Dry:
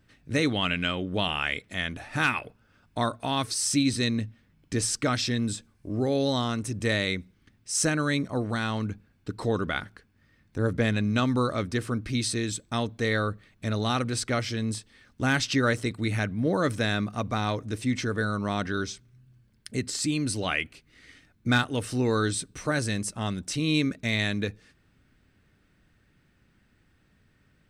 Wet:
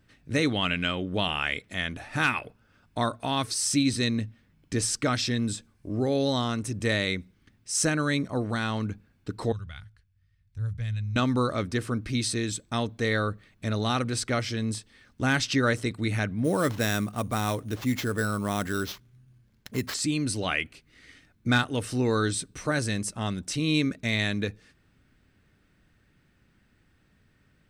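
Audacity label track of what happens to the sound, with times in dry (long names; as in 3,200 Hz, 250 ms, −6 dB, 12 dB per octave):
9.520000	11.160000	drawn EQ curve 110 Hz 0 dB, 290 Hz −29 dB, 3,100 Hz −12 dB
16.440000	19.940000	sample-rate reduction 9,400 Hz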